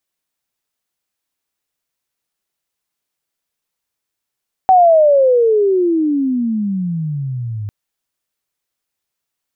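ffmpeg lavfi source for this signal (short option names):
-f lavfi -i "aevalsrc='pow(10,(-5-16*t/3)/20)*sin(2*PI*765*3/(-35*log(2)/12)*(exp(-35*log(2)/12*t/3)-1))':d=3:s=44100"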